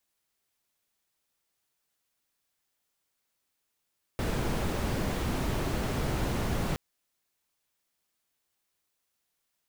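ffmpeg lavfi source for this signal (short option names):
-f lavfi -i "anoisesrc=c=brown:a=0.157:d=2.57:r=44100:seed=1"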